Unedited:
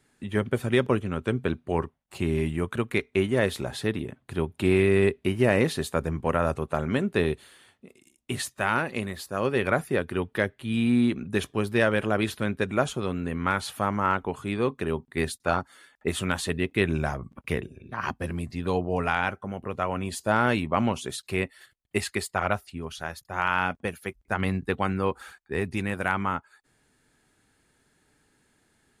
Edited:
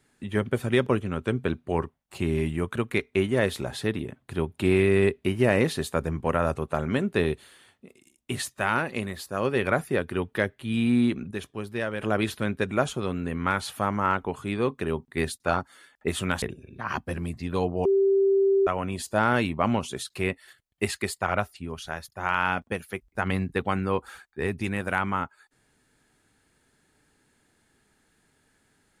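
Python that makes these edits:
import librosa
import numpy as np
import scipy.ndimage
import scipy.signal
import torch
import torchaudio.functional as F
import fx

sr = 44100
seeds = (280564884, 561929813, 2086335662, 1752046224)

y = fx.edit(x, sr, fx.clip_gain(start_s=11.31, length_s=0.7, db=-7.5),
    fx.cut(start_s=16.42, length_s=1.13),
    fx.bleep(start_s=18.98, length_s=0.82, hz=391.0, db=-17.5), tone=tone)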